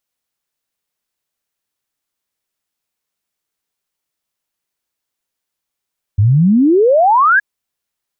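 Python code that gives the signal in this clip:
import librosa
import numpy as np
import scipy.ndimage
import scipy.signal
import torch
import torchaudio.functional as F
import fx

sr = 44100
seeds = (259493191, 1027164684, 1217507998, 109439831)

y = fx.ess(sr, length_s=1.22, from_hz=95.0, to_hz=1700.0, level_db=-7.0)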